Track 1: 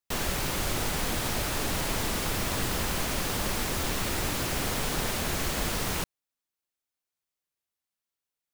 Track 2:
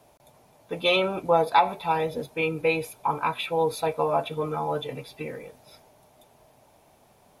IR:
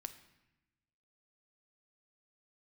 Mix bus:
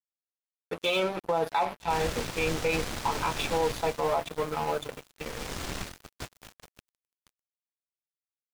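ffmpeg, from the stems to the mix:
-filter_complex "[0:a]aeval=exprs='val(0)+0.00891*(sin(2*PI*60*n/s)+sin(2*PI*2*60*n/s)/2+sin(2*PI*3*60*n/s)/3+sin(2*PI*4*60*n/s)/4+sin(2*PI*5*60*n/s)/5)':c=same,adelay=1800,volume=3.98,afade=t=out:st=3.54:d=0.64:silence=0.237137,afade=t=in:st=5.15:d=0.35:silence=0.237137,asplit=2[s0][s1];[s1]volume=0.0708[s2];[1:a]highpass=58,bandreject=f=50:t=h:w=6,bandreject=f=100:t=h:w=6,bandreject=f=150:t=h:w=6,bandreject=f=200:t=h:w=6,bandreject=f=250:t=h:w=6,bandreject=f=300:t=h:w=6,volume=1.19,asplit=3[s3][s4][s5];[s4]volume=0.0794[s6];[s5]apad=whole_len=455810[s7];[s0][s7]sidechaingate=range=0.0224:threshold=0.002:ratio=16:detection=peak[s8];[2:a]atrim=start_sample=2205[s9];[s2][s6]amix=inputs=2:normalize=0[s10];[s10][s9]afir=irnorm=-1:irlink=0[s11];[s8][s3][s11]amix=inputs=3:normalize=0,acrossover=split=8100[s12][s13];[s13]acompressor=threshold=0.00398:ratio=4:attack=1:release=60[s14];[s12][s14]amix=inputs=2:normalize=0,aeval=exprs='sgn(val(0))*max(abs(val(0))-0.0237,0)':c=same,alimiter=limit=0.133:level=0:latency=1:release=23"

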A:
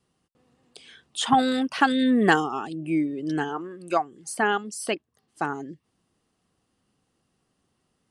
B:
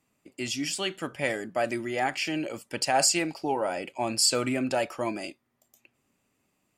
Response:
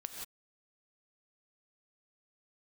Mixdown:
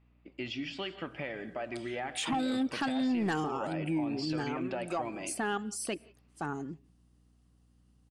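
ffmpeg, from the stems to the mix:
-filter_complex "[0:a]bass=f=250:g=8,treble=f=4000:g=3,asoftclip=type=tanh:threshold=0.251,adelay=1000,volume=0.473,asplit=2[s0][s1];[s1]volume=0.1[s2];[1:a]lowpass=f=3600:w=0.5412,lowpass=f=3600:w=1.3066,acompressor=threshold=0.0224:ratio=6,volume=0.631,asplit=2[s3][s4];[s4]volume=0.596[s5];[2:a]atrim=start_sample=2205[s6];[s2][s5]amix=inputs=2:normalize=0[s7];[s7][s6]afir=irnorm=-1:irlink=0[s8];[s0][s3][s8]amix=inputs=3:normalize=0,aeval=exprs='val(0)+0.000631*(sin(2*PI*60*n/s)+sin(2*PI*2*60*n/s)/2+sin(2*PI*3*60*n/s)/3+sin(2*PI*4*60*n/s)/4+sin(2*PI*5*60*n/s)/5)':c=same,alimiter=level_in=1.06:limit=0.0631:level=0:latency=1:release=47,volume=0.944"

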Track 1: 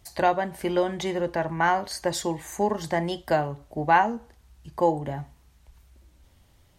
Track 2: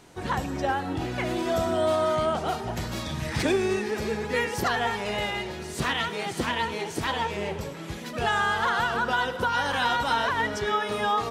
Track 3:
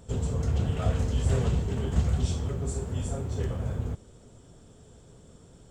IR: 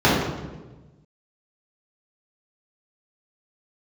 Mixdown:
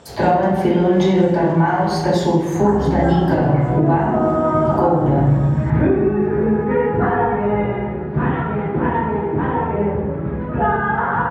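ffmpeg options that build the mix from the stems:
-filter_complex "[0:a]agate=range=0.0224:threshold=0.00398:ratio=3:detection=peak,acompressor=threshold=0.0398:ratio=6,volume=1.12,asplit=2[s0][s1];[s1]volume=0.299[s2];[1:a]lowpass=f=1900:w=0.5412,lowpass=f=1900:w=1.3066,adelay=2350,volume=0.237,asplit=2[s3][s4];[s4]volume=0.531[s5];[2:a]lowpass=7100,asplit=2[s6][s7];[s7]highpass=f=720:p=1,volume=44.7,asoftclip=type=tanh:threshold=0.251[s8];[s6][s8]amix=inputs=2:normalize=0,lowpass=f=3200:p=1,volume=0.501,volume=0.282,asplit=2[s9][s10];[s10]volume=0.112[s11];[s0][s9]amix=inputs=2:normalize=0,acompressor=threshold=0.0126:ratio=3,volume=1[s12];[3:a]atrim=start_sample=2205[s13];[s2][s5]amix=inputs=2:normalize=0[s14];[s14][s13]afir=irnorm=-1:irlink=0[s15];[s11]aecho=0:1:944:1[s16];[s3][s12][s15][s16]amix=inputs=4:normalize=0,alimiter=limit=0.531:level=0:latency=1:release=374"

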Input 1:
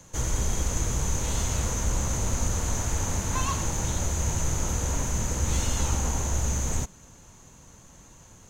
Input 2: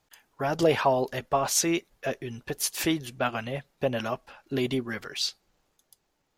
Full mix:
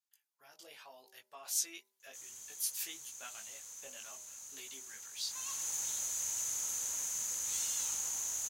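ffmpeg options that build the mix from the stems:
-filter_complex "[0:a]adelay=2000,volume=0.316,afade=t=in:st=5.16:d=0.57:silence=0.237137[s0];[1:a]flanger=delay=18:depth=3:speed=0.85,volume=0.237[s1];[s0][s1]amix=inputs=2:normalize=0,aderivative,bandreject=f=77.1:t=h:w=4,bandreject=f=154.2:t=h:w=4,bandreject=f=231.3:t=h:w=4,bandreject=f=308.4:t=h:w=4,bandreject=f=385.5:t=h:w=4,bandreject=f=462.6:t=h:w=4,bandreject=f=539.7:t=h:w=4,bandreject=f=616.8:t=h:w=4,bandreject=f=693.9:t=h:w=4,bandreject=f=771:t=h:w=4,bandreject=f=848.1:t=h:w=4,bandreject=f=925.2:t=h:w=4,bandreject=f=1002.3:t=h:w=4,dynaudnorm=f=790:g=3:m=2.66"

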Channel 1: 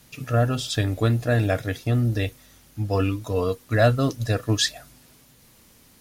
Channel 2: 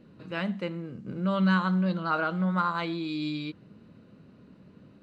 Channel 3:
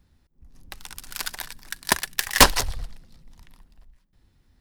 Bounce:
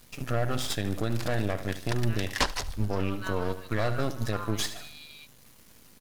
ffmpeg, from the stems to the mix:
-filter_complex "[0:a]aeval=exprs='max(val(0),0)':c=same,volume=1.26,asplit=2[s0][s1];[s1]volume=0.188[s2];[1:a]highpass=f=900:w=0.5412,highpass=f=900:w=1.3066,adelay=1750,volume=0.473[s3];[2:a]acrossover=split=7400[s4][s5];[s5]acompressor=threshold=0.0158:ratio=4:attack=1:release=60[s6];[s4][s6]amix=inputs=2:normalize=0,volume=0.473,asplit=2[s7][s8];[s8]volume=0.075[s9];[s2][s9]amix=inputs=2:normalize=0,aecho=0:1:75|150|225|300|375|450:1|0.4|0.16|0.064|0.0256|0.0102[s10];[s0][s3][s7][s10]amix=inputs=4:normalize=0,alimiter=limit=0.158:level=0:latency=1:release=219"

